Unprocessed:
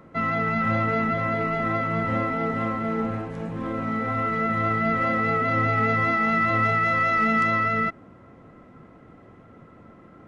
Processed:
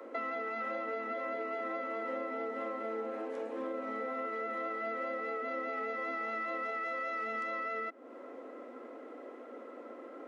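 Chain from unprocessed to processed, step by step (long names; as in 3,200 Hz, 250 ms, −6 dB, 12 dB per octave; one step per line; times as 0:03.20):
Butterworth high-pass 240 Hz 96 dB per octave
parametric band 520 Hz +9.5 dB 0.56 octaves
downward compressor 6 to 1, threshold −36 dBFS, peak gain reduction 17 dB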